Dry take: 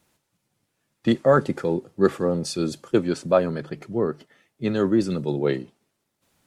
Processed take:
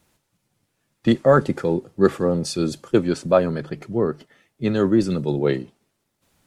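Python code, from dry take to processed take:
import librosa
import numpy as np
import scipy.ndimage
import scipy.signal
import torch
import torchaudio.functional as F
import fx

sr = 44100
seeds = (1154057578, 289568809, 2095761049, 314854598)

y = fx.low_shelf(x, sr, hz=74.0, db=8.0)
y = F.gain(torch.from_numpy(y), 2.0).numpy()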